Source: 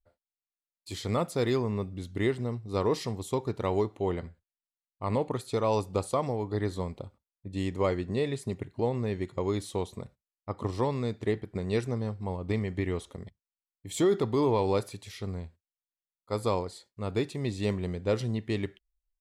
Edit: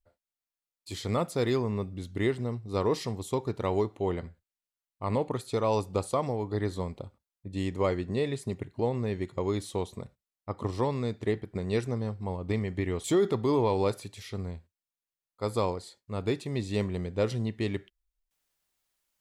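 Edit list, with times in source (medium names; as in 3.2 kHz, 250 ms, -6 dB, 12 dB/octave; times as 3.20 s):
13.04–13.93 s: delete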